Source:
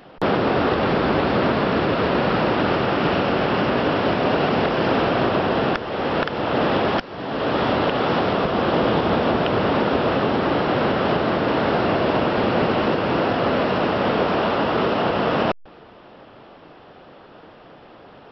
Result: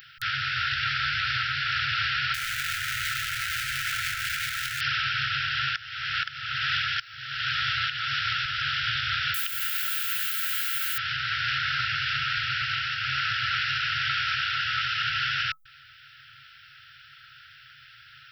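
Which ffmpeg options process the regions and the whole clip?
-filter_complex "[0:a]asettb=1/sr,asplit=3[s0][s1][s2];[s0]atrim=end=2.344[s3];[s1]atrim=start=2.34:end=4.81,asetpts=PTS-STARTPTS,afade=t=in:d=0.004:c=qsin,afade=t=out:st=2.466:d=0.004:c=qsin,lowpass=f=1300:p=1,equalizer=f=110:t=o:w=1.4:g=11,aeval=exprs='0.0841*(abs(mod(val(0)/0.0841+3,4)-2)-1)':c=same[s4];[s2]atrim=start=4.806[s5];[s3][s4]acrossfade=d=0.004:c1=hsin:c2=qsin[s6];[s6][s5]acrossfade=d=0.004:c1=qsin:c2=hsin,asettb=1/sr,asplit=3[s7][s8][s9];[s7]atrim=end=9.344[s10];[s8]atrim=start=9.34:end=10.98,asetpts=PTS-STARTPTS,afade=t=in:d=0.004:c=qsin,afade=t=out:st=1.636:d=0.004:c=qsin,highpass=f=540:p=1,equalizer=f=740:t=o:w=0.74:g=-13.5,acrusher=bits=7:dc=4:mix=0:aa=0.000001[s11];[s9]atrim=start=10.976[s12];[s10][s11]acrossfade=d=0.004:c1=hsin:c2=qsin[s13];[s13][s12]acrossfade=d=0.004:c1=qsin:c2=hsin,afftfilt=real='re*(1-between(b*sr/4096,150,1300))':imag='im*(1-between(b*sr/4096,150,1300))':win_size=4096:overlap=0.75,aemphasis=mode=production:type=bsi,alimiter=limit=0.119:level=0:latency=1:release=496,volume=1.26"

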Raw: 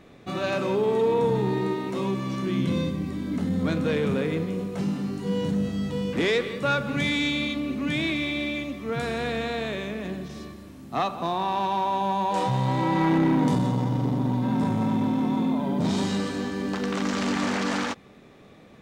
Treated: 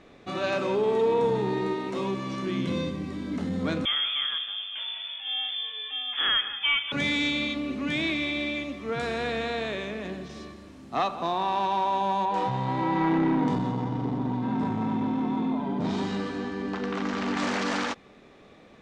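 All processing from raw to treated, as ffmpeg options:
-filter_complex "[0:a]asettb=1/sr,asplit=3[s0][s1][s2];[s0]atrim=end=3.854[s3];[s1]atrim=start=3.85:end=6.92,asetpts=PTS-STARTPTS,afade=t=in:d=0.004:c=qsin,afade=t=out:st=3.066:d=0.004:c=qsin,highpass=330,lowpass=f=3100:t=q:w=0.5098,lowpass=f=3100:t=q:w=0.6013,lowpass=f=3100:t=q:w=0.9,lowpass=f=3100:t=q:w=2.563,afreqshift=-3700[s4];[s2]atrim=start=6.916[s5];[s3][s4]acrossfade=d=0.004:c1=hsin:c2=qsin[s6];[s6][s5]acrossfade=d=0.004:c1=qsin:c2=hsin,asettb=1/sr,asplit=3[s7][s8][s9];[s7]atrim=end=12.254[s10];[s8]atrim=start=12.25:end=17.37,asetpts=PTS-STARTPTS,afade=t=in:d=0.004:c=qsin,afade=t=out:st=5.116:d=0.004:c=qsin,lowpass=f=2300:p=1,bandreject=f=560:w=7.3[s11];[s9]atrim=start=17.366[s12];[s10][s11]acrossfade=d=0.004:c1=hsin:c2=qsin[s13];[s13][s12]acrossfade=d=0.004:c1=qsin:c2=hsin,lowpass=7300,equalizer=f=130:t=o:w=1.7:g=-6.5"

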